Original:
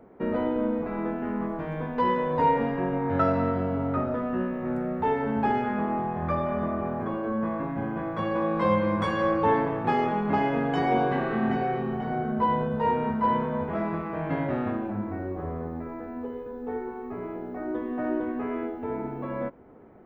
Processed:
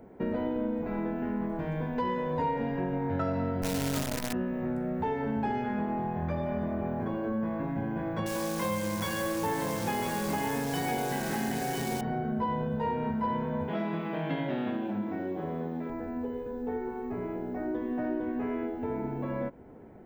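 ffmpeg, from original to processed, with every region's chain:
ffmpeg -i in.wav -filter_complex "[0:a]asettb=1/sr,asplit=3[link_01][link_02][link_03];[link_01]atrim=end=3.624[link_04];[link_02]atrim=start=3.62:end=4.33,asetpts=PTS-STARTPTS,afade=type=in:duration=0.004:curve=qsin,afade=type=out:start_time=0.706:duration=0.004:curve=qsin,asplit=2[link_05][link_06];[link_06]adelay=15,volume=-5dB[link_07];[link_05][link_07]amix=inputs=2:normalize=0,atrim=end_sample=31311,acrusher=bits=5:dc=4:mix=0:aa=0.000001[link_08];[link_03]atrim=start=4.326[link_09];[link_04][link_08]acrossfade=duration=0.004:curve1=hsin:curve2=qsin[link_10];[link_10][link_09]acrossfade=duration=0.004:curve1=qsin:curve2=hsin,asettb=1/sr,asplit=3[link_11][link_12][link_13];[link_11]atrim=end=8.264[link_14];[link_12]atrim=start=8.26:end=12.01,asetpts=PTS-STARTPTS,afade=type=in:duration=0.004:curve=qsin,afade=type=out:start_time=3.746:duration=0.004:curve=qsin,tiltshelf=frequency=1400:gain=-4,aecho=1:1:1000:0.501,atrim=end_sample=165375,acrusher=bits=7:dc=4:mix=0:aa=0.000001[link_15];[link_13]atrim=start=12.006[link_16];[link_14][link_15]acrossfade=duration=0.004:curve1=hsin:curve2=qsin[link_17];[link_17][link_16]acrossfade=duration=0.004:curve1=qsin:curve2=hsin,asettb=1/sr,asplit=3[link_18][link_19][link_20];[link_18]atrim=end=13.684[link_21];[link_19]atrim=start=13.68:end=15.9,asetpts=PTS-STARTPTS,afade=type=in:duration=0.004:curve=qsin,afade=type=out:start_time=2.216:duration=0.004:curve=qsin,highpass=frequency=150:width=0.5412,highpass=frequency=150:width=1.3066,equalizer=frequency=3300:width=2.2:gain=12.5[link_22];[link_20]atrim=start=15.896[link_23];[link_21][link_22]acrossfade=duration=0.004:curve1=hsin:curve2=qsin[link_24];[link_24][link_23]acrossfade=duration=0.004:curve1=qsin:curve2=hsin,bass=frequency=250:gain=4,treble=frequency=4000:gain=7,bandreject=frequency=1200:width=5.3,acompressor=threshold=-30dB:ratio=2.5" out.wav

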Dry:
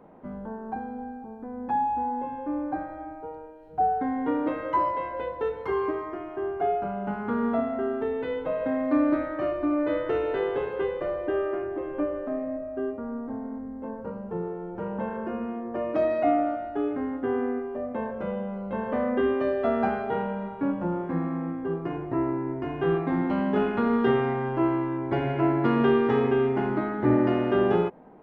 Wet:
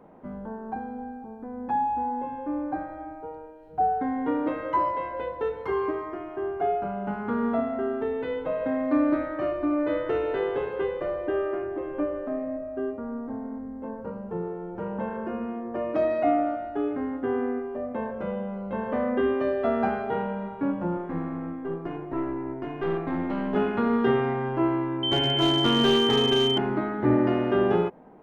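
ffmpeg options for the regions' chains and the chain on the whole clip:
ffmpeg -i in.wav -filter_complex "[0:a]asettb=1/sr,asplit=3[link_01][link_02][link_03];[link_01]atrim=end=20.974[link_04];[link_02]atrim=start=20.97:end=23.55,asetpts=PTS-STARTPTS,afade=type=in:duration=0.004:curve=qsin,afade=type=out:start_time=2.576:duration=0.004:curve=qsin,highpass=140,aeval=exprs='(tanh(10*val(0)+0.45)-tanh(0.45))/10':channel_layout=same[link_05];[link_03]atrim=start=23.546[link_06];[link_04][link_05]acrossfade=duration=0.004:curve1=hsin:curve2=qsin[link_07];[link_07][link_06]acrossfade=duration=0.004:curve1=qsin:curve2=hsin,asettb=1/sr,asplit=3[link_08][link_09][link_10];[link_08]atrim=end=25.034[link_11];[link_09]atrim=start=25.03:end=26.58,asetpts=PTS-STARTPTS,afade=type=in:duration=0.004:curve=qsin,afade=type=out:start_time=1.546:duration=0.004:curve=qsin,aemphasis=mode=production:type=50kf,aeval=exprs='val(0)+0.0631*sin(2*PI*3100*n/s)':channel_layout=same,aeval=exprs='clip(val(0),-1,0.141)':channel_layout=same[link_12];[link_10]atrim=start=26.576[link_13];[link_11][link_12]acrossfade=duration=0.004:curve1=hsin:curve2=qsin[link_14];[link_14][link_13]acrossfade=duration=0.004:curve1=qsin:curve2=hsin" out.wav

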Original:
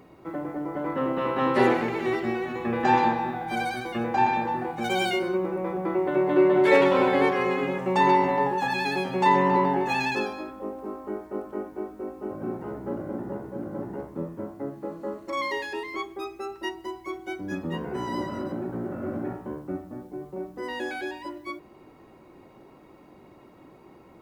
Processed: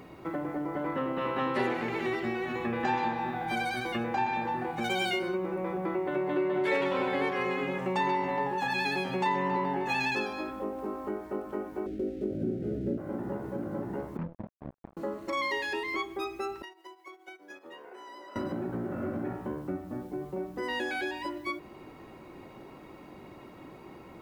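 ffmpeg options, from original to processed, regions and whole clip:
ffmpeg -i in.wav -filter_complex "[0:a]asettb=1/sr,asplit=3[link_01][link_02][link_03];[link_01]atrim=end=11.864[link_04];[link_02]atrim=start=11.86:end=12.98,asetpts=PTS-STARTPTS,afade=type=in:duration=0.004:curve=qsin,afade=type=out:start_time=1.116:duration=0.004:curve=qsin,tiltshelf=frequency=1100:gain=9.5,aeval=exprs='sgn(val(0))*max(abs(val(0))-0.00158,0)':channel_layout=same,asuperstop=centerf=990:order=4:qfactor=0.85[link_05];[link_03]atrim=start=12.976[link_06];[link_04][link_05]acrossfade=duration=0.004:curve1=hsin:curve2=qsin[link_07];[link_07][link_06]acrossfade=duration=0.004:curve1=qsin:curve2=hsin,asettb=1/sr,asplit=3[link_08][link_09][link_10];[link_08]atrim=end=14.174[link_11];[link_09]atrim=start=14.17:end=14.97,asetpts=PTS-STARTPTS,afade=type=in:duration=0.004:curve=qsin,afade=type=out:start_time=0.796:duration=0.004:curve=qsin,asuperpass=centerf=150:order=4:qfactor=1.3,acrusher=bits=5:mix=0:aa=0.5[link_12];[link_10]atrim=start=14.966[link_13];[link_11][link_12]acrossfade=duration=0.004:curve1=hsin:curve2=qsin[link_14];[link_14][link_13]acrossfade=duration=0.004:curve1=qsin:curve2=hsin,asettb=1/sr,asplit=3[link_15][link_16][link_17];[link_15]atrim=end=16.624[link_18];[link_16]atrim=start=16.62:end=18.36,asetpts=PTS-STARTPTS,afade=type=in:duration=0.004:curve=qsin,afade=type=out:start_time=1.736:duration=0.004:curve=qsin,highpass=frequency=400:width=0.5412,highpass=frequency=400:width=1.3066,agate=range=-13dB:threshold=-39dB:ratio=16:release=100:detection=peak,acompressor=threshold=-47dB:ratio=12:attack=3.2:release=140:knee=1:detection=peak[link_19];[link_17]atrim=start=18.356[link_20];[link_18][link_19]acrossfade=duration=0.004:curve1=hsin:curve2=qsin[link_21];[link_21][link_20]acrossfade=duration=0.004:curve1=qsin:curve2=hsin,bass=frequency=250:gain=2,treble=frequency=4000:gain=-8,acompressor=threshold=-35dB:ratio=2.5,highshelf=frequency=2300:gain=10,volume=2dB" out.wav

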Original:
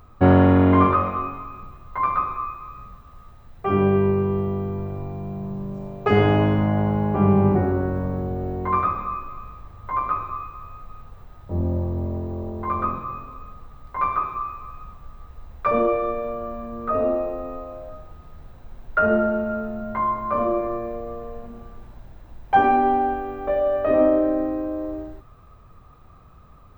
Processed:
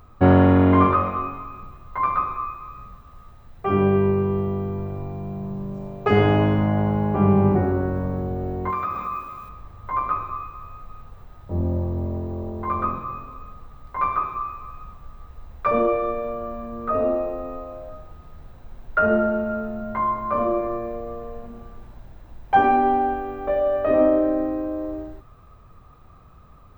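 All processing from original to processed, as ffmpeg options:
ffmpeg -i in.wav -filter_complex "[0:a]asettb=1/sr,asplit=3[link_01][link_02][link_03];[link_01]atrim=end=8.704[link_04];[link_02]atrim=start=8.7:end=9.49,asetpts=PTS-STARTPTS,afade=type=in:duration=0.004:curve=qsin,afade=type=out:start_time=0.786:duration=0.004:curve=qsin,highpass=frequency=100:poles=1,highshelf=frequency=3400:gain=10,acompressor=threshold=-24dB:ratio=3:attack=3.2:release=140:knee=1:detection=peak[link_05];[link_03]atrim=start=9.486[link_06];[link_04][link_05]acrossfade=duration=0.004:curve1=hsin:curve2=qsin[link_07];[link_07][link_06]acrossfade=duration=0.004:curve1=qsin:curve2=hsin" out.wav

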